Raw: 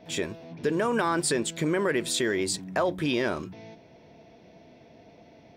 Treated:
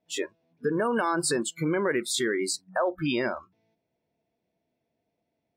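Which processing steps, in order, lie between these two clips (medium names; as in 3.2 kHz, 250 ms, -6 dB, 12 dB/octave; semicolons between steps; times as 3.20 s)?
spectral noise reduction 27 dB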